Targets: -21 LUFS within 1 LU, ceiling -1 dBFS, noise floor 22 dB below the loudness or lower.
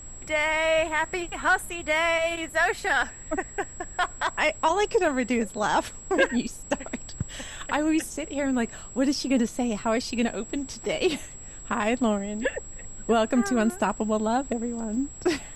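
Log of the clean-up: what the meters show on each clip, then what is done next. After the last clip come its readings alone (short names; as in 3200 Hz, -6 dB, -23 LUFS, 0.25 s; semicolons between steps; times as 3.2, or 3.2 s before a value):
steady tone 7700 Hz; tone level -42 dBFS; noise floor -42 dBFS; noise floor target -49 dBFS; loudness -26.5 LUFS; peak -9.0 dBFS; loudness target -21.0 LUFS
-> notch 7700 Hz, Q 30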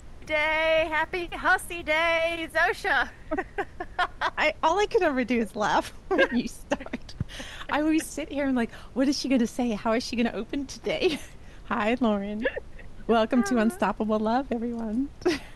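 steady tone none; noise floor -46 dBFS; noise floor target -49 dBFS
-> noise print and reduce 6 dB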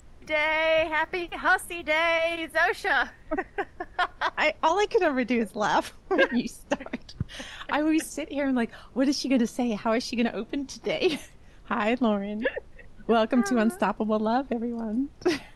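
noise floor -51 dBFS; loudness -26.5 LUFS; peak -9.5 dBFS; loudness target -21.0 LUFS
-> gain +5.5 dB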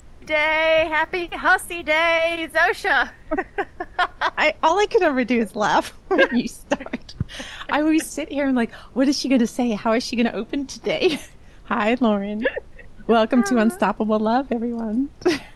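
loudness -21.0 LUFS; peak -4.0 dBFS; noise floor -46 dBFS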